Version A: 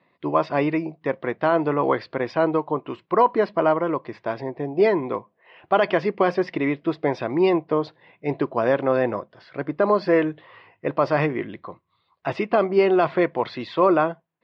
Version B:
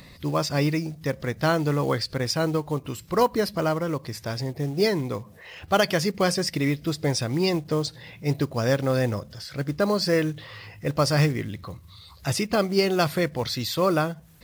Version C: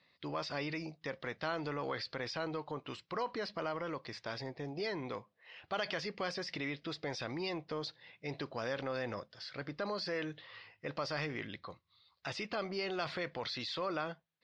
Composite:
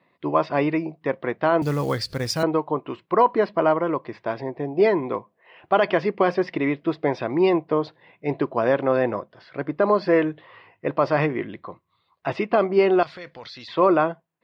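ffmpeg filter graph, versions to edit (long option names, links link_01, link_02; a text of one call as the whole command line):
ffmpeg -i take0.wav -i take1.wav -i take2.wav -filter_complex "[0:a]asplit=3[link_01][link_02][link_03];[link_01]atrim=end=1.622[link_04];[1:a]atrim=start=1.618:end=2.432[link_05];[link_02]atrim=start=2.428:end=13.032[link_06];[2:a]atrim=start=13.028:end=13.682[link_07];[link_03]atrim=start=13.678[link_08];[link_04][link_05]acrossfade=duration=0.004:curve1=hsin:curve2=hsin[link_09];[link_09][link_06]acrossfade=duration=0.004:curve1=hsin:curve2=hsin[link_10];[link_10][link_07]acrossfade=duration=0.004:curve1=hsin:curve2=hsin[link_11];[link_11][link_08]acrossfade=duration=0.004:curve1=hsin:curve2=hsin" out.wav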